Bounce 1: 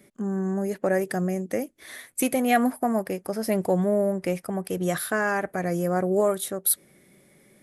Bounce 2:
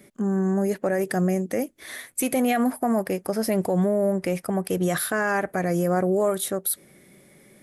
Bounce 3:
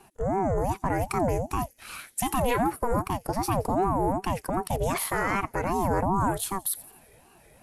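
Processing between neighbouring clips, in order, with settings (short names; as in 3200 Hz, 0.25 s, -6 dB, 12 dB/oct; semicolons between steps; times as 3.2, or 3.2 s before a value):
limiter -18.5 dBFS, peak gain reduction 9 dB; gain +4 dB
thin delay 87 ms, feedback 47%, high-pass 4800 Hz, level -16 dB; ring modulator with a swept carrier 410 Hz, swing 45%, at 2.6 Hz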